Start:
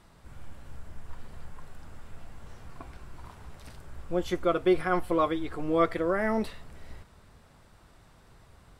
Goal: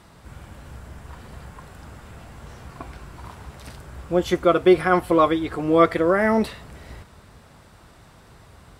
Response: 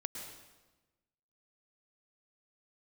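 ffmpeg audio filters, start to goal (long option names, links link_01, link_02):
-af "highpass=48,volume=8.5dB"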